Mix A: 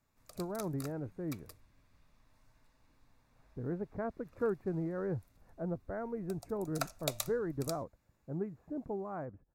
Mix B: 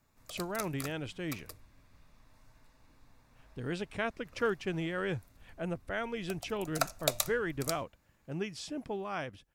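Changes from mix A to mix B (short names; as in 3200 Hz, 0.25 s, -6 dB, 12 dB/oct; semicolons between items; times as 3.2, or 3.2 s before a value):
speech: remove Gaussian blur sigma 7.6 samples; background +6.0 dB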